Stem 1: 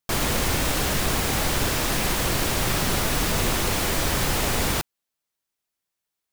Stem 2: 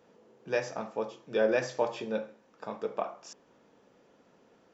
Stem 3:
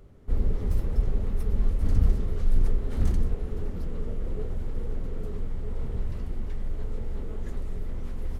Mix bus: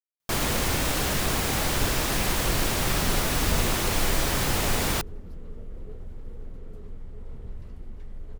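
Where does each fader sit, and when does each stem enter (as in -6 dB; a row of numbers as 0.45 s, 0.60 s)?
-2.0 dB, mute, -8.5 dB; 0.20 s, mute, 1.50 s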